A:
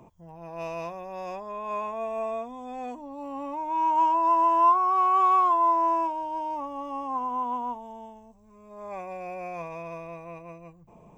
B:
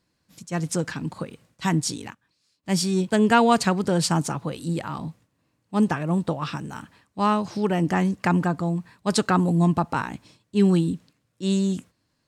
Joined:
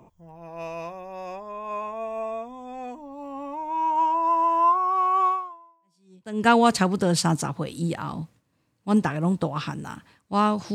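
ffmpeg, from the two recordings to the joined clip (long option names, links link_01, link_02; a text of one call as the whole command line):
ffmpeg -i cue0.wav -i cue1.wav -filter_complex "[0:a]apad=whole_dur=10.74,atrim=end=10.74,atrim=end=6.48,asetpts=PTS-STARTPTS[link_01];[1:a]atrim=start=2.14:end=7.6,asetpts=PTS-STARTPTS[link_02];[link_01][link_02]acrossfade=duration=1.2:curve1=exp:curve2=exp" out.wav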